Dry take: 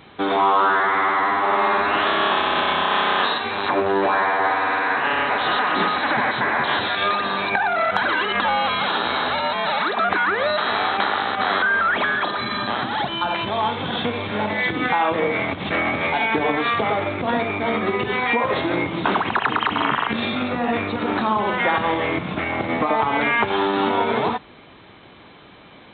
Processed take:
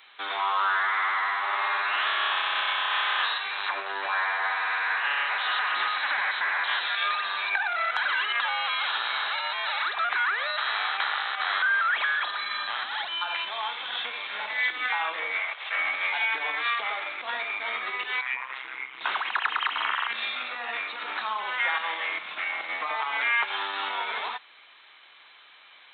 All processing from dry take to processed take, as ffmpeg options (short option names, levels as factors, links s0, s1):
-filter_complex "[0:a]asettb=1/sr,asplit=3[s0][s1][s2];[s0]atrim=end=15.394[s3];[s1]atrim=start=15.39:end=15.79,asetpts=PTS-STARTPTS,afade=t=in:d=0.004:c=qsin,afade=t=out:st=0.396:d=0.004:c=qsin,highpass=f=440:w=0.5412,highpass=f=440:w=1.3066,acrossover=split=3600[s4][s5];[s5]acompressor=threshold=0.00224:ratio=4:attack=1:release=60[s6];[s4][s6]amix=inputs=2:normalize=0[s7];[s2]atrim=start=15.786[s8];[s3][s7]acrossfade=d=0.004:c1=hsin:c2=qsin[s9];[s9][s8]acrossfade=d=0.004:c1=qsin:c2=hsin,asettb=1/sr,asplit=3[s10][s11][s12];[s10]atrim=end=18.214[s13];[s11]atrim=start=18.21:end=19.01,asetpts=PTS-STARTPTS,afade=t=in:d=0.004:c=qsin,afade=t=out:st=0.796:d=0.004:c=qsin,lowpass=f=2900:w=0.5412,lowpass=f=2900:w=1.3066,equalizer=f=520:t=o:w=1.1:g=-12.5,tremolo=f=130:d=0.974[s14];[s12]atrim=start=19.006[s15];[s13][s14]acrossfade=d=0.004:c1=hsin:c2=qsin[s16];[s16][s15]acrossfade=d=0.004:c1=qsin:c2=hsin,highpass=1500,acrossover=split=4000[s17][s18];[s18]acompressor=threshold=0.00708:ratio=4:attack=1:release=60[s19];[s17][s19]amix=inputs=2:normalize=0,volume=0.841"